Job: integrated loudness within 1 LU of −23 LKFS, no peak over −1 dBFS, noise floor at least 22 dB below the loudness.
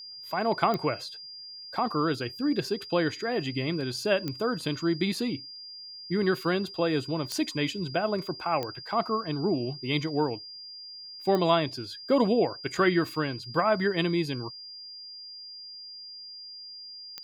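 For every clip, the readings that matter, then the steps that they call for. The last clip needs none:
number of clicks 6; interfering tone 4,800 Hz; level of the tone −41 dBFS; integrated loudness −28.5 LKFS; sample peak −8.5 dBFS; target loudness −23.0 LKFS
→ click removal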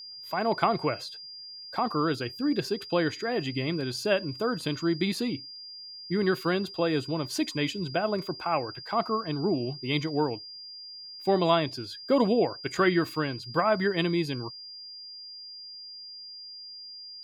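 number of clicks 0; interfering tone 4,800 Hz; level of the tone −41 dBFS
→ notch filter 4,800 Hz, Q 30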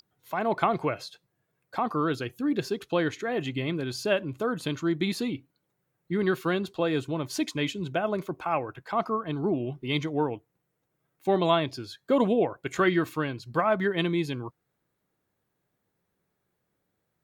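interfering tone none found; integrated loudness −28.5 LKFS; sample peak −8.5 dBFS; target loudness −23.0 LKFS
→ level +5.5 dB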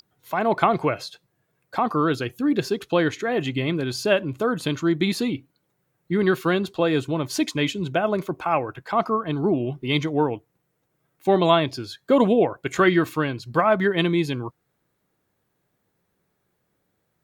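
integrated loudness −23.0 LKFS; sample peak −3.0 dBFS; background noise floor −74 dBFS

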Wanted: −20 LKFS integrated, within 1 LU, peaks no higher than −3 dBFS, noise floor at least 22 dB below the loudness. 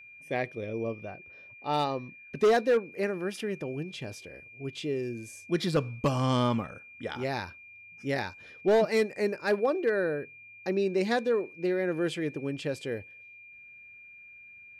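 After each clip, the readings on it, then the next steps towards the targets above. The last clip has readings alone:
share of clipped samples 0.5%; peaks flattened at −18.0 dBFS; interfering tone 2,400 Hz; level of the tone −48 dBFS; integrated loudness −30.0 LKFS; sample peak −18.0 dBFS; target loudness −20.0 LKFS
→ clipped peaks rebuilt −18 dBFS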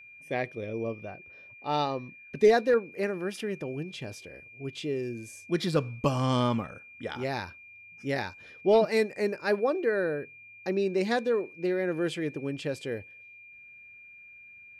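share of clipped samples 0.0%; interfering tone 2,400 Hz; level of the tone −48 dBFS
→ notch filter 2,400 Hz, Q 30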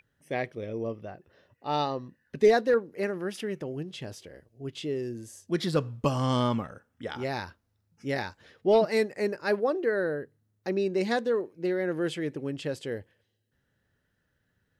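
interfering tone none found; integrated loudness −29.5 LKFS; sample peak −10.0 dBFS; target loudness −20.0 LKFS
→ level +9.5 dB
brickwall limiter −3 dBFS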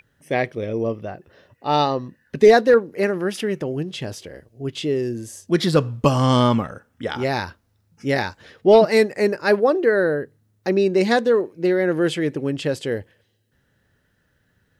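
integrated loudness −20.0 LKFS; sample peak −3.0 dBFS; background noise floor −66 dBFS

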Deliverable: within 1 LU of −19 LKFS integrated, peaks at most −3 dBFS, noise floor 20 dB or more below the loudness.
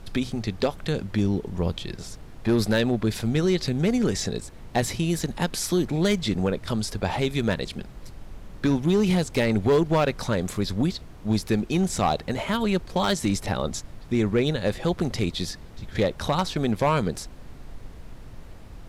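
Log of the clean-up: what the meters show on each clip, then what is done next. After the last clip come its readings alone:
share of clipped samples 1.1%; peaks flattened at −15.0 dBFS; background noise floor −43 dBFS; target noise floor −46 dBFS; integrated loudness −25.5 LKFS; sample peak −15.0 dBFS; target loudness −19.0 LKFS
→ clipped peaks rebuilt −15 dBFS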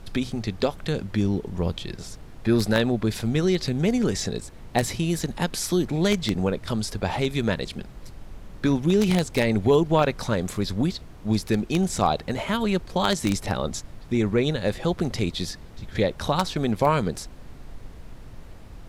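share of clipped samples 0.0%; background noise floor −43 dBFS; target noise floor −45 dBFS
→ noise reduction from a noise print 6 dB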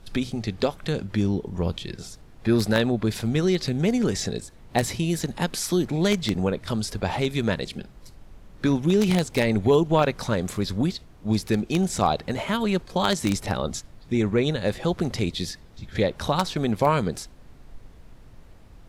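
background noise floor −49 dBFS; integrated loudness −25.0 LKFS; sample peak −6.0 dBFS; target loudness −19.0 LKFS
→ level +6 dB
brickwall limiter −3 dBFS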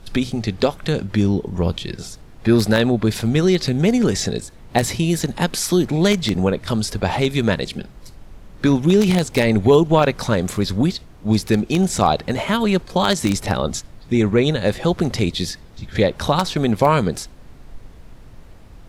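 integrated loudness −19.0 LKFS; sample peak −3.0 dBFS; background noise floor −43 dBFS

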